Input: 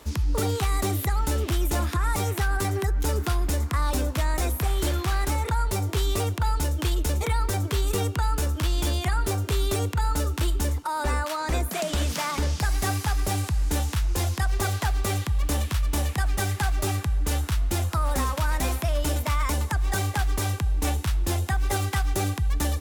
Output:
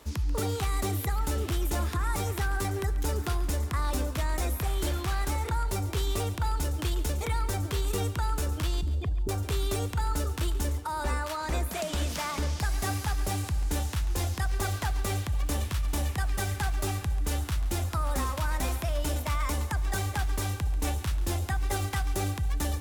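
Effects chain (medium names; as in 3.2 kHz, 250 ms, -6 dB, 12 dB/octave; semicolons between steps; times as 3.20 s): 8.81–9.29 s: resonances exaggerated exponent 3; two-band feedback delay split 760 Hz, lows 510 ms, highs 139 ms, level -15 dB; trim -4.5 dB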